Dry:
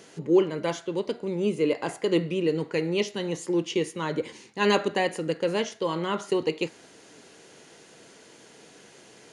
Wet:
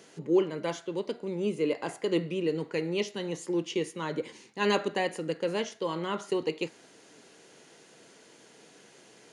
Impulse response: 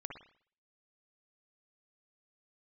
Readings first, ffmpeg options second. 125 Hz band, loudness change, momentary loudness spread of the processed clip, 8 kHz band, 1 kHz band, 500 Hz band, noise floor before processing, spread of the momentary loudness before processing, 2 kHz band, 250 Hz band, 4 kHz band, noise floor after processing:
-4.5 dB, -4.0 dB, 8 LU, -4.0 dB, -4.0 dB, -4.0 dB, -52 dBFS, 8 LU, -4.0 dB, -4.0 dB, -4.0 dB, -57 dBFS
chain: -af "highpass=110,volume=0.631"

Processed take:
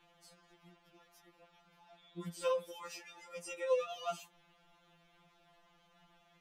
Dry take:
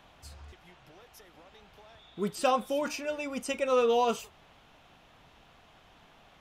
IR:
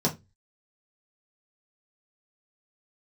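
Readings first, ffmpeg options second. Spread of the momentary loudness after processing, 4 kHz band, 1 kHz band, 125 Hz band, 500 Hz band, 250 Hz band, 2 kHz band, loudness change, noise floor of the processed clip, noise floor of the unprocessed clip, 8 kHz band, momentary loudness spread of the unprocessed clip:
15 LU, -10.0 dB, -13.5 dB, -6.5 dB, -8.5 dB, -16.5 dB, -10.5 dB, -10.0 dB, -69 dBFS, -59 dBFS, -9.0 dB, 10 LU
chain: -af "afftfilt=real='re*2.83*eq(mod(b,8),0)':imag='im*2.83*eq(mod(b,8),0)':win_size=2048:overlap=0.75,volume=0.447"

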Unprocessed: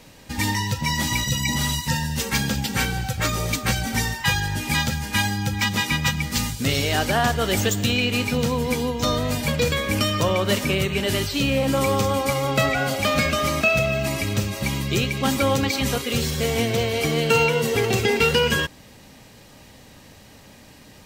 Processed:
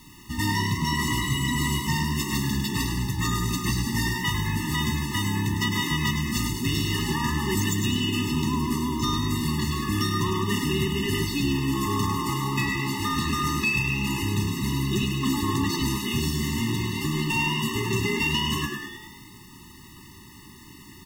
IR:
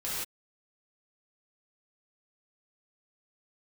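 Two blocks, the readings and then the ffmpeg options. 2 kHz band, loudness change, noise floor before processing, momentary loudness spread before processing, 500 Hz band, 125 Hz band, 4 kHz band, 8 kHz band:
-5.0 dB, -3.5 dB, -47 dBFS, 5 LU, -11.5 dB, -1.5 dB, -4.0 dB, -4.5 dB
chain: -filter_complex "[0:a]acrusher=bits=7:mix=0:aa=0.000001,asoftclip=type=tanh:threshold=0.133,asplit=8[s0][s1][s2][s3][s4][s5][s6][s7];[s1]adelay=103,afreqshift=66,volume=0.473[s8];[s2]adelay=206,afreqshift=132,volume=0.269[s9];[s3]adelay=309,afreqshift=198,volume=0.153[s10];[s4]adelay=412,afreqshift=264,volume=0.0881[s11];[s5]adelay=515,afreqshift=330,volume=0.0501[s12];[s6]adelay=618,afreqshift=396,volume=0.0285[s13];[s7]adelay=721,afreqshift=462,volume=0.0162[s14];[s0][s8][s9][s10][s11][s12][s13][s14]amix=inputs=8:normalize=0,afftfilt=real='re*eq(mod(floor(b*sr/1024/430),2),0)':imag='im*eq(mod(floor(b*sr/1024/430),2),0)':win_size=1024:overlap=0.75"

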